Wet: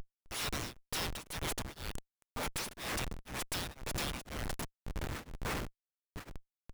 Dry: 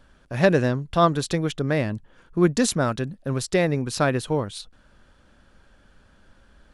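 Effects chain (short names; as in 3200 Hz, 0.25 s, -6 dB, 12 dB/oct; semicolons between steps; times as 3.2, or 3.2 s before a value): wind noise 310 Hz -32 dBFS; spectral gate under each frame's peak -30 dB weak; high shelf 2600 Hz +2.5 dB; compressor 5:1, threshold -47 dBFS, peak gain reduction 14.5 dB; RIAA curve recording; hard clip -34 dBFS, distortion -13 dB; sample leveller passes 1; Schmitt trigger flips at -42.5 dBFS; beating tremolo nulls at 2 Hz; gain +11 dB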